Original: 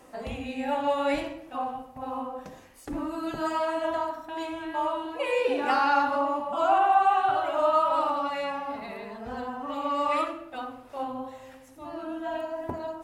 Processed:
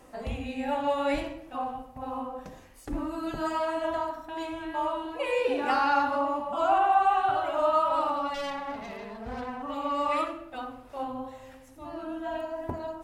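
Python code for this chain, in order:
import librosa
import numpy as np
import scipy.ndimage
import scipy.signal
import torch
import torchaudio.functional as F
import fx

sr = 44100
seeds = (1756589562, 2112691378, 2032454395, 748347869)

y = fx.self_delay(x, sr, depth_ms=0.19, at=(8.34, 9.62))
y = fx.low_shelf(y, sr, hz=77.0, db=11.5)
y = y * librosa.db_to_amplitude(-1.5)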